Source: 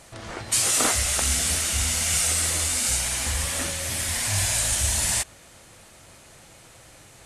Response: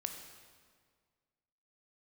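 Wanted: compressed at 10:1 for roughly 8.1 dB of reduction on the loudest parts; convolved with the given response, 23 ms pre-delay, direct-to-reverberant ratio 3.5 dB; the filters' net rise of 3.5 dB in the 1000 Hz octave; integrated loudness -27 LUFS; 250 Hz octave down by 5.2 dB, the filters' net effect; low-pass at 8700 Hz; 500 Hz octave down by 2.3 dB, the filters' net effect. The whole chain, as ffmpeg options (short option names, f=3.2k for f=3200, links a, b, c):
-filter_complex "[0:a]lowpass=8.7k,equalizer=f=250:t=o:g=-6,equalizer=f=500:t=o:g=-4,equalizer=f=1k:t=o:g=6,acompressor=threshold=-26dB:ratio=10,asplit=2[a][b];[1:a]atrim=start_sample=2205,adelay=23[c];[b][c]afir=irnorm=-1:irlink=0,volume=-3dB[d];[a][d]amix=inputs=2:normalize=0"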